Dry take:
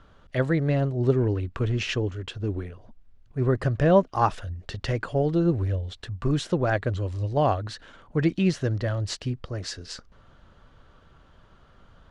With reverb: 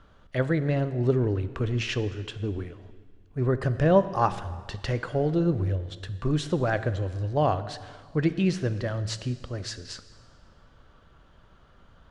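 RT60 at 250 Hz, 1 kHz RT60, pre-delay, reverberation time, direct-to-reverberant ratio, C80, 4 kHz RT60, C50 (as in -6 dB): 1.6 s, 1.7 s, 5 ms, 1.7 s, 12.0 dB, 14.5 dB, 1.6 s, 13.5 dB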